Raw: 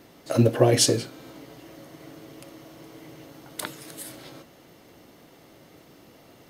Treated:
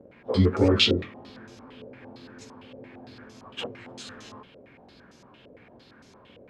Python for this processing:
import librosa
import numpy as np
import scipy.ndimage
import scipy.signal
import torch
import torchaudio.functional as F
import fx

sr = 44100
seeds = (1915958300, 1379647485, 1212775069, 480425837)

y = fx.pitch_bins(x, sr, semitones=-4.0)
y = fx.filter_held_lowpass(y, sr, hz=8.8, low_hz=550.0, high_hz=6100.0)